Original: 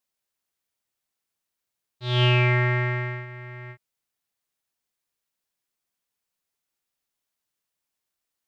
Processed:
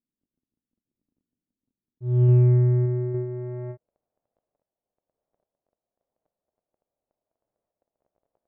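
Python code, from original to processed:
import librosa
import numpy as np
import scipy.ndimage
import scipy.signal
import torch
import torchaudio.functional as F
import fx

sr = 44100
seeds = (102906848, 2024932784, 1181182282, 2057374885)

y = fx.dmg_crackle(x, sr, seeds[0], per_s=14.0, level_db=-52.0)
y = fx.filter_sweep_lowpass(y, sr, from_hz=260.0, to_hz=620.0, start_s=2.68, end_s=3.97, q=3.1)
y = fx.tremolo_random(y, sr, seeds[1], hz=3.5, depth_pct=55)
y = y * librosa.db_to_amplitude(6.5)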